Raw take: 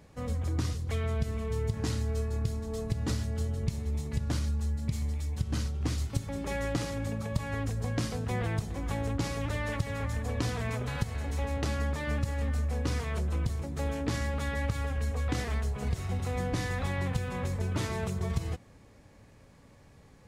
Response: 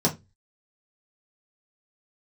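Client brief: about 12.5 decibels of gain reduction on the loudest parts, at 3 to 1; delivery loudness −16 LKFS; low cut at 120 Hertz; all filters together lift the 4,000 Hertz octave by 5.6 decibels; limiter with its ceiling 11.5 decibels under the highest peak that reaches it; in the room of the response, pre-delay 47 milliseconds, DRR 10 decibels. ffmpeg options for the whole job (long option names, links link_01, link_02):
-filter_complex "[0:a]highpass=120,equalizer=frequency=4000:width_type=o:gain=7,acompressor=threshold=-46dB:ratio=3,alimiter=level_in=14.5dB:limit=-24dB:level=0:latency=1,volume=-14.5dB,asplit=2[link_01][link_02];[1:a]atrim=start_sample=2205,adelay=47[link_03];[link_02][link_03]afir=irnorm=-1:irlink=0,volume=-22dB[link_04];[link_01][link_04]amix=inputs=2:normalize=0,volume=29.5dB"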